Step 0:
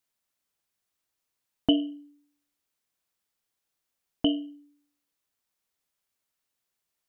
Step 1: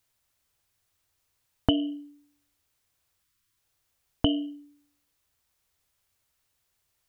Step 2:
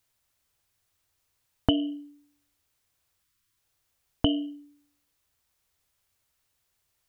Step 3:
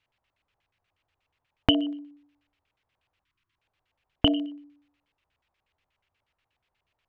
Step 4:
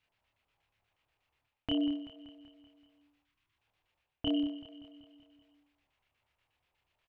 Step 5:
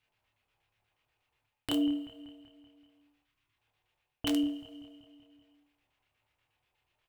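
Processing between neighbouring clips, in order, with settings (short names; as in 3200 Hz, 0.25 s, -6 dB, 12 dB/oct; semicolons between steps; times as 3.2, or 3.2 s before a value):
spectral delete 3.23–3.58, 390–930 Hz; resonant low shelf 140 Hz +9 dB, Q 1.5; compressor, threshold -26 dBFS, peak gain reduction 9 dB; gain +7 dB
nothing audible
LFO low-pass square 8.3 Hz 870–2700 Hz; gain +1 dB
reverse; compressor 10:1, threshold -29 dBFS, peak gain reduction 15.5 dB; reverse; doubler 28 ms -2 dB; feedback echo 0.191 s, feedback 59%, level -13.5 dB; gain -3.5 dB
wrapped overs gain 22 dB; two-slope reverb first 0.29 s, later 1.9 s, from -20 dB, DRR 8 dB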